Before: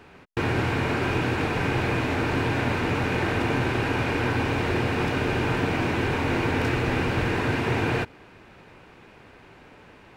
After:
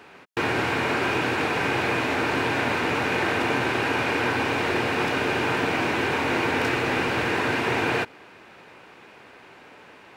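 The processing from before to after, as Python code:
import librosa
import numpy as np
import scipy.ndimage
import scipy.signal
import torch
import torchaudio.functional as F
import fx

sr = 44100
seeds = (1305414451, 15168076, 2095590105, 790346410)

y = fx.highpass(x, sr, hz=420.0, slope=6)
y = y * 10.0 ** (4.0 / 20.0)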